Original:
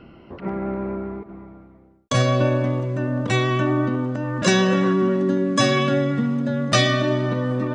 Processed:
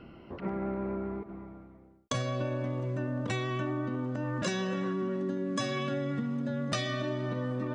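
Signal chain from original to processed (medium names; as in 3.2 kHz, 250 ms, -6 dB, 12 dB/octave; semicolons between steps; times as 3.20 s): compression, threshold -25 dBFS, peak gain reduction 12 dB; trim -4.5 dB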